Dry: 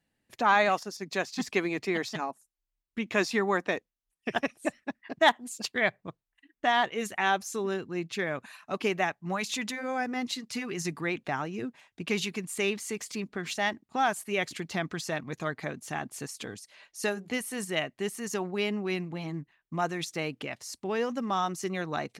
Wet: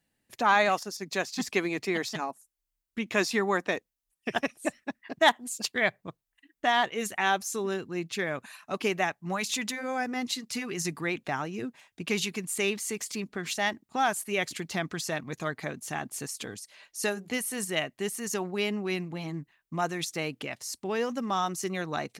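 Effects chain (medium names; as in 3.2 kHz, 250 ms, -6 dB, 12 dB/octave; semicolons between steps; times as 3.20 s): treble shelf 6.2 kHz +7.5 dB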